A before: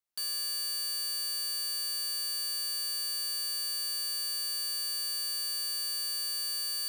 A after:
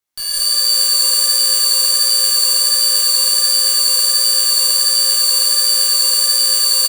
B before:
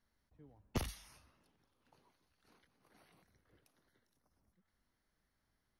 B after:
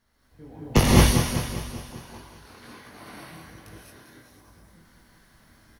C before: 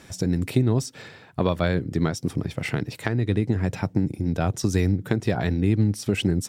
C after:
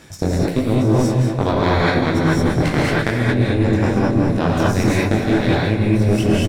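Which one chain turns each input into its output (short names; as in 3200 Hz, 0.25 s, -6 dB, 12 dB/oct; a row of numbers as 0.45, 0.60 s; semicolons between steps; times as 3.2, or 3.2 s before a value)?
added harmonics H 2 -7 dB, 6 -23 dB, 7 -22 dB, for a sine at -6 dBFS; on a send: feedback echo 0.198 s, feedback 57%, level -9 dB; on the sum: AGC gain up to 8 dB; chorus 1.4 Hz, delay 18.5 ms, depth 6.2 ms; non-linear reverb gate 0.25 s rising, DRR -5.5 dB; reverse; compressor 6:1, threshold -29 dBFS; reverse; normalise peaks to -1.5 dBFS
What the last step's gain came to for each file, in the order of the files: +19.0, +21.0, +15.0 dB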